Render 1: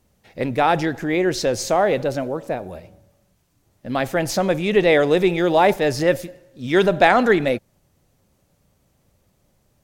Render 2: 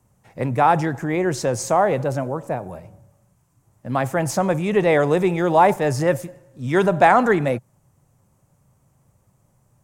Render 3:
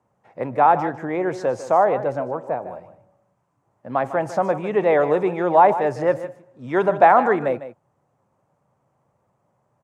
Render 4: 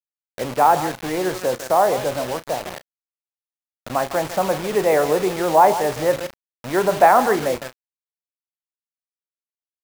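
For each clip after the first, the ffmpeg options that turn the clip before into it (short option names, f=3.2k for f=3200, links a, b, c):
-filter_complex "[0:a]equalizer=f=125:t=o:w=1:g=12,equalizer=f=1k:t=o:w=1:g=9,equalizer=f=4k:t=o:w=1:g=-8,equalizer=f=8k:t=o:w=1:g=8,acrossover=split=100|1100|7300[a][b][c][d];[a]acompressor=threshold=-43dB:ratio=6[e];[e][b][c][d]amix=inputs=4:normalize=0,volume=-4dB"
-af "bandpass=f=750:t=q:w=0.73:csg=0,aecho=1:1:152:0.224,volume=1.5dB"
-filter_complex "[0:a]acrusher=bits=4:mix=0:aa=0.000001,asplit=2[a][b];[b]adelay=32,volume=-13.5dB[c];[a][c]amix=inputs=2:normalize=0"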